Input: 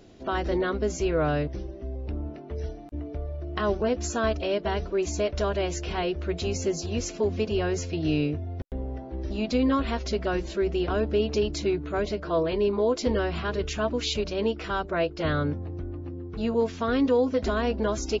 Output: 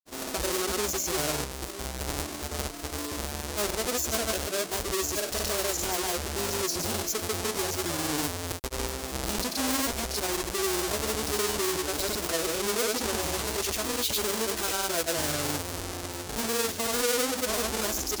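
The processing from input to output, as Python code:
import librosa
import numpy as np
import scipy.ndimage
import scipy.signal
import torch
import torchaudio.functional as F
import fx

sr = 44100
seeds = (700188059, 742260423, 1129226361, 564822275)

p1 = fx.halfwave_hold(x, sr)
p2 = fx.bass_treble(p1, sr, bass_db=-10, treble_db=12)
p3 = fx.over_compress(p2, sr, threshold_db=-29.0, ratio=-1.0)
p4 = p2 + (p3 * librosa.db_to_amplitude(1.0))
p5 = fx.granulator(p4, sr, seeds[0], grain_ms=100.0, per_s=20.0, spray_ms=100.0, spread_st=0)
y = p5 * librosa.db_to_amplitude(-8.5)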